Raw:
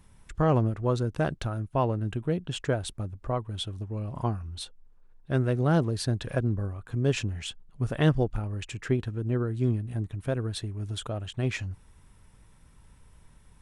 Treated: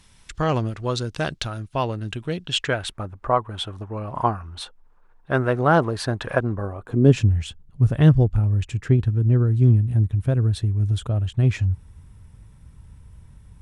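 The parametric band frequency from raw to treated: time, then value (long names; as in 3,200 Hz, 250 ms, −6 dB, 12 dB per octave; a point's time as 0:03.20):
parametric band +14.5 dB 2.5 octaves
0:02.48 4,400 Hz
0:03.05 1,100 Hz
0:06.55 1,100 Hz
0:06.99 320 Hz
0:07.30 84 Hz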